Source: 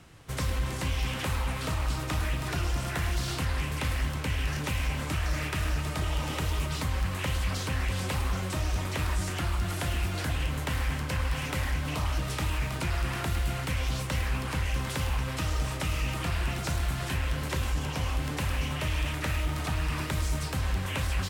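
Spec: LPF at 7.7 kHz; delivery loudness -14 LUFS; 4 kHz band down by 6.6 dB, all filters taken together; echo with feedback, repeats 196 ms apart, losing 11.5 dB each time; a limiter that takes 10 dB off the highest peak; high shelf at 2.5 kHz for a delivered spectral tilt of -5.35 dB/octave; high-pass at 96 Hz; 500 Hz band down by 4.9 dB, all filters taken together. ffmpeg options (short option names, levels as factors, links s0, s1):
-af "highpass=96,lowpass=7700,equalizer=f=500:t=o:g=-6,highshelf=f=2500:g=-6,equalizer=f=4000:t=o:g=-3.5,alimiter=level_in=2.51:limit=0.0631:level=0:latency=1,volume=0.398,aecho=1:1:196|392|588:0.266|0.0718|0.0194,volume=21.1"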